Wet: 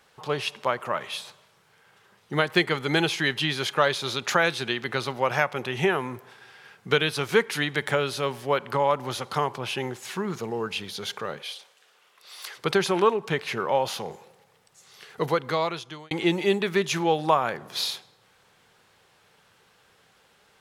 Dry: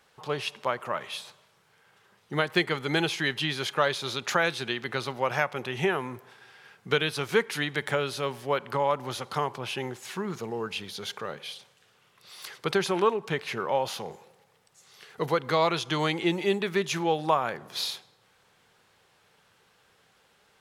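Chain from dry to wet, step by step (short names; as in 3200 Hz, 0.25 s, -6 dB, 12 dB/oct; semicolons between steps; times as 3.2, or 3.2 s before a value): 11.42–12.56 HPF 440 Hz 12 dB/oct; 15.21–16.11 fade out; gain +3 dB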